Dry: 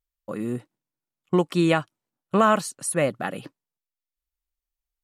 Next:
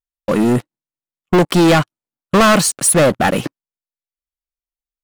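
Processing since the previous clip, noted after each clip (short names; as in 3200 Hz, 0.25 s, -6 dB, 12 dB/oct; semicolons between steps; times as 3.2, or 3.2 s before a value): sample leveller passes 5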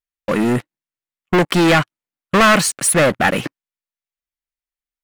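bell 2000 Hz +7 dB 1.3 oct; gain -3 dB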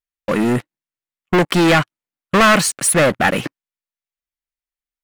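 nothing audible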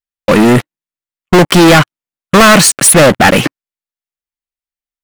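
sample leveller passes 3; gain +3 dB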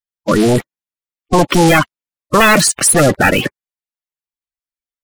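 bin magnitudes rounded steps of 30 dB; gain -4 dB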